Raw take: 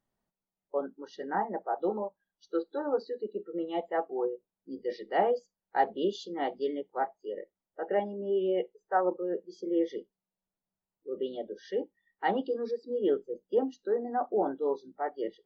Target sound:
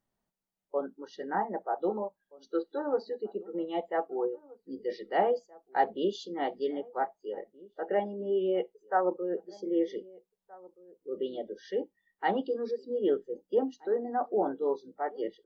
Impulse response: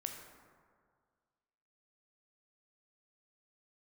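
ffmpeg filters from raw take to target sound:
-filter_complex "[0:a]asplit=2[s0][s1];[s1]adelay=1574,volume=0.0794,highshelf=f=4000:g=-35.4[s2];[s0][s2]amix=inputs=2:normalize=0"

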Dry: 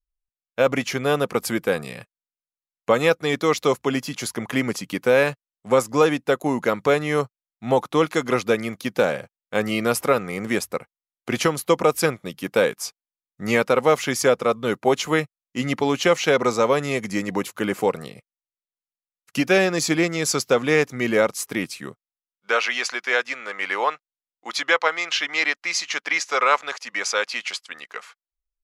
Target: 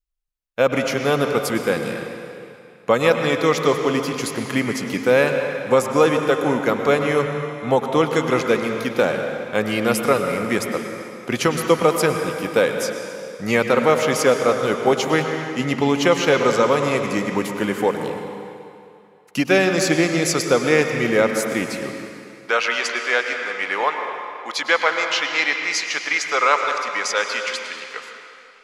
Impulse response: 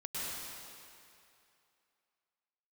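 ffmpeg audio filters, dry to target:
-filter_complex "[0:a]asplit=2[s0][s1];[1:a]atrim=start_sample=2205,highshelf=f=7300:g=-8.5[s2];[s1][s2]afir=irnorm=-1:irlink=0,volume=0.596[s3];[s0][s3]amix=inputs=2:normalize=0,volume=0.891"

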